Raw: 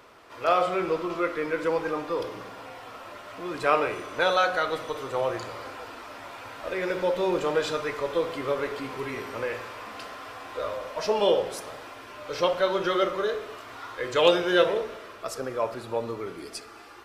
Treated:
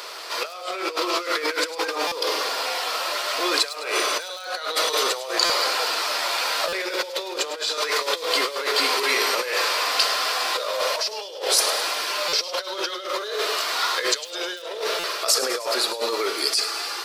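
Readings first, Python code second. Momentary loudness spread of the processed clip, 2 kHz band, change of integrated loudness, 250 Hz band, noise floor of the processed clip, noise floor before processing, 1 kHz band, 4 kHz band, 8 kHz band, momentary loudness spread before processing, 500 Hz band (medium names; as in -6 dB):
8 LU, +7.0 dB, +4.5 dB, -3.5 dB, -36 dBFS, -46 dBFS, +3.5 dB, +14.0 dB, +19.0 dB, 18 LU, -1.5 dB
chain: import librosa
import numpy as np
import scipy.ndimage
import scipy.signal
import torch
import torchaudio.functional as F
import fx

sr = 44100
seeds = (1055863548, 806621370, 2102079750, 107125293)

p1 = fx.peak_eq(x, sr, hz=4500.0, db=9.0, octaves=0.59)
p2 = (np.mod(10.0 ** (10.0 / 20.0) * p1 + 1.0, 2.0) - 1.0) / 10.0 ** (10.0 / 20.0)
p3 = p1 + F.gain(torch.from_numpy(p2), -11.0).numpy()
p4 = scipy.signal.sosfilt(scipy.signal.butter(4, 400.0, 'highpass', fs=sr, output='sos'), p3)
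p5 = fx.over_compress(p4, sr, threshold_db=-34.0, ratio=-1.0)
p6 = fx.high_shelf(p5, sr, hz=2900.0, db=11.5)
p7 = p6 + fx.echo_wet_highpass(p6, sr, ms=104, feedback_pct=59, hz=3700.0, wet_db=-12.0, dry=0)
p8 = fx.buffer_glitch(p7, sr, at_s=(2.07, 5.45, 6.68, 12.28, 14.99), block=256, repeats=7)
y = F.gain(torch.from_numpy(p8), 4.5).numpy()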